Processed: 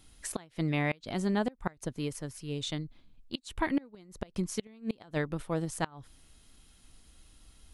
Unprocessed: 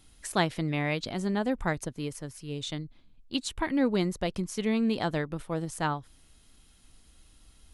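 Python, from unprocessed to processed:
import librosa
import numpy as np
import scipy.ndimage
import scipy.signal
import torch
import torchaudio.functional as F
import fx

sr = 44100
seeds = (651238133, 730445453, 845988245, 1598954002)

y = fx.gate_flip(x, sr, shuts_db=-18.0, range_db=-27)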